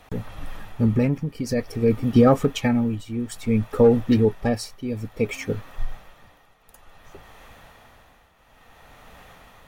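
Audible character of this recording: tremolo triangle 0.57 Hz, depth 80%

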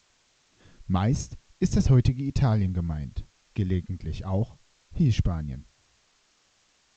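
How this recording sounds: a quantiser's noise floor 10-bit, dither triangular; G.722

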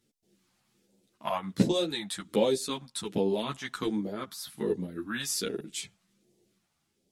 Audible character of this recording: phasing stages 2, 1.3 Hz, lowest notch 370–1300 Hz; random-step tremolo; a shimmering, thickened sound

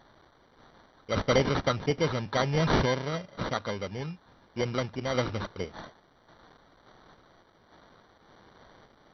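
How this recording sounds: a quantiser's noise floor 10-bit, dither triangular; random-step tremolo; aliases and images of a low sample rate 2600 Hz, jitter 0%; MP2

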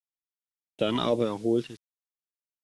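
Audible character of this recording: random-step tremolo 4.2 Hz, depth 90%; a quantiser's noise floor 10-bit, dither none; phasing stages 2, 2.8 Hz, lowest notch 500–1100 Hz; AAC

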